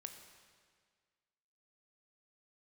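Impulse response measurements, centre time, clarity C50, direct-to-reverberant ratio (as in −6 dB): 32 ms, 7.0 dB, 5.5 dB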